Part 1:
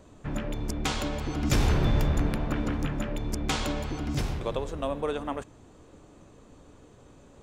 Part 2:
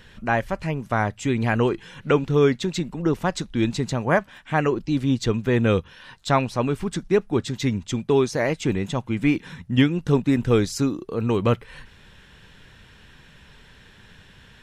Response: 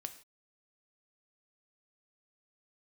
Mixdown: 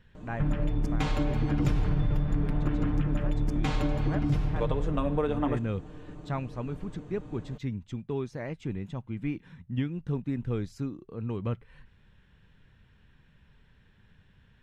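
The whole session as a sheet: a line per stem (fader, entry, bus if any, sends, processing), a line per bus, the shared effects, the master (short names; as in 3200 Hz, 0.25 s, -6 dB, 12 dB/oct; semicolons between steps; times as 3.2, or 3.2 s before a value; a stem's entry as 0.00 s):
-0.5 dB, 0.15 s, send -5.5 dB, comb 6.6 ms, depth 63%
-15.5 dB, 0.00 s, muted 4.64–5.28, no send, high shelf 8400 Hz +5 dB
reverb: on, pre-delay 3 ms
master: tone controls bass +8 dB, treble -12 dB; compressor 6:1, threshold -23 dBFS, peak gain reduction 14.5 dB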